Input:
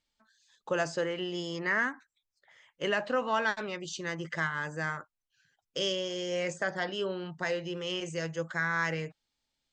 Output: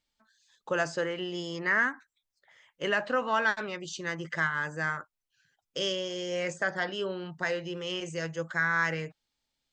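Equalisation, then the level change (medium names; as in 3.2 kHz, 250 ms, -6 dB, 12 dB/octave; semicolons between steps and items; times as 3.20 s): dynamic bell 1.5 kHz, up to +4 dB, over -41 dBFS, Q 1.6; 0.0 dB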